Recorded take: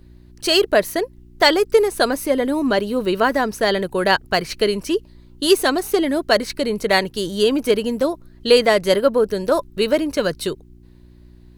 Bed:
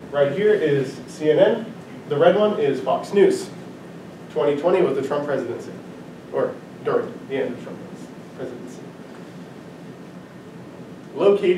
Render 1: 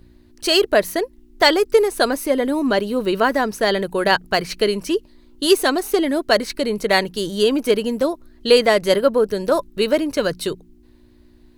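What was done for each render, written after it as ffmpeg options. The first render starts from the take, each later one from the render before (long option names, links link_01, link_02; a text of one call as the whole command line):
ffmpeg -i in.wav -af "bandreject=frequency=60:width_type=h:width=4,bandreject=frequency=120:width_type=h:width=4,bandreject=frequency=180:width_type=h:width=4" out.wav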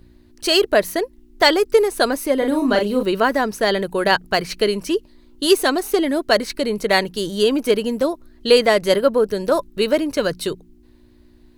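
ffmpeg -i in.wav -filter_complex "[0:a]asettb=1/sr,asplit=3[link_01][link_02][link_03];[link_01]atrim=end=2.384[link_04];[link_02]atrim=start=2.38:end=3.03,asetpts=PTS-STARTPTS,afade=type=in:duration=0.004:curve=qsin,afade=type=out:start_time=0.646:duration=0.004:curve=qsin,asplit=2[link_05][link_06];[link_06]adelay=39,volume=-5dB[link_07];[link_05][link_07]amix=inputs=2:normalize=0,atrim=end_sample=28665[link_08];[link_03]atrim=start=3.026[link_09];[link_04][link_08]acrossfade=duration=0.004:curve1=hsin:curve2=qsin[link_10];[link_10][link_09]acrossfade=duration=0.004:curve1=qsin:curve2=hsin" out.wav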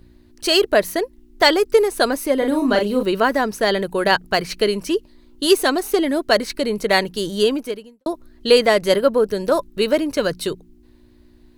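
ffmpeg -i in.wav -filter_complex "[0:a]asplit=2[link_01][link_02];[link_01]atrim=end=8.06,asetpts=PTS-STARTPTS,afade=type=out:start_time=7.45:duration=0.61:curve=qua[link_03];[link_02]atrim=start=8.06,asetpts=PTS-STARTPTS,afade=type=in:duration=0.004:curve=hsin[link_04];[link_03][link_04]concat=n=2:v=0:a=1" out.wav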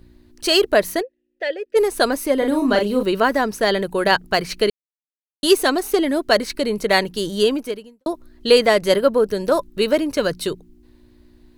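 ffmpeg -i in.wav -filter_complex "[0:a]asplit=3[link_01][link_02][link_03];[link_01]afade=type=out:start_time=1.01:duration=0.02[link_04];[link_02]asplit=3[link_05][link_06][link_07];[link_05]bandpass=frequency=530:width_type=q:width=8,volume=0dB[link_08];[link_06]bandpass=frequency=1840:width_type=q:width=8,volume=-6dB[link_09];[link_07]bandpass=frequency=2480:width_type=q:width=8,volume=-9dB[link_10];[link_08][link_09][link_10]amix=inputs=3:normalize=0,afade=type=in:start_time=1.01:duration=0.02,afade=type=out:start_time=1.75:duration=0.02[link_11];[link_03]afade=type=in:start_time=1.75:duration=0.02[link_12];[link_04][link_11][link_12]amix=inputs=3:normalize=0,asplit=3[link_13][link_14][link_15];[link_13]atrim=end=4.7,asetpts=PTS-STARTPTS,afade=type=out:start_time=4.696:duration=0.004:curve=hsin[link_16];[link_14]atrim=start=4.7:end=5.43,asetpts=PTS-STARTPTS,volume=0[link_17];[link_15]atrim=start=5.43,asetpts=PTS-STARTPTS,afade=type=in:duration=0.004:curve=hsin[link_18];[link_16][link_17][link_18]concat=n=3:v=0:a=1" out.wav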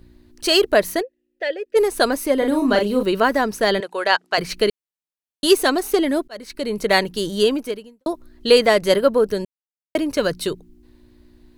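ffmpeg -i in.wav -filter_complex "[0:a]asettb=1/sr,asplit=3[link_01][link_02][link_03];[link_01]atrim=end=3.804[link_04];[link_02]atrim=start=3.8:end=4.38,asetpts=PTS-STARTPTS,afade=type=in:duration=0.004:curve=qsin,afade=type=out:start_time=0.576:duration=0.004:curve=qsin,highpass=560,lowpass=7300[link_05];[link_03]atrim=start=4.376[link_06];[link_04][link_05]acrossfade=duration=0.004:curve1=hsin:curve2=qsin[link_07];[link_07][link_06]acrossfade=duration=0.004:curve1=qsin:curve2=hsin,asplit=4[link_08][link_09][link_10][link_11];[link_08]atrim=end=6.28,asetpts=PTS-STARTPTS,afade=type=out:start_time=6.276:duration=0.004:curve=hsin[link_12];[link_09]atrim=start=6.28:end=9.45,asetpts=PTS-STARTPTS,afade=type=in:duration=0.56,afade=type=out:start_time=3.166:duration=0.004:curve=hsin[link_13];[link_10]atrim=start=9.45:end=9.95,asetpts=PTS-STARTPTS,volume=0[link_14];[link_11]atrim=start=9.95,asetpts=PTS-STARTPTS,afade=type=in:duration=0.004:curve=hsin[link_15];[link_12][link_13][link_14][link_15]concat=n=4:v=0:a=1" out.wav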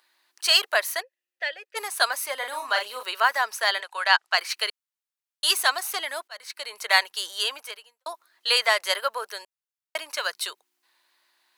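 ffmpeg -i in.wav -af "highpass=frequency=860:width=0.5412,highpass=frequency=860:width=1.3066" out.wav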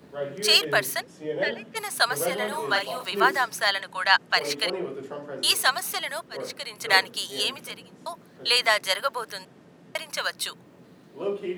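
ffmpeg -i in.wav -i bed.wav -filter_complex "[1:a]volume=-13.5dB[link_01];[0:a][link_01]amix=inputs=2:normalize=0" out.wav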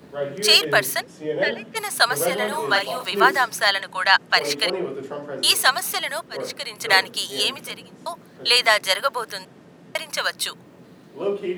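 ffmpeg -i in.wav -af "volume=4.5dB,alimiter=limit=-2dB:level=0:latency=1" out.wav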